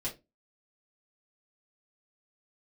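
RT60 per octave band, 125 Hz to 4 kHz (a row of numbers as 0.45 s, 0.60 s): 0.30 s, 0.30 s, 0.25 s, 0.20 s, 0.20 s, 0.20 s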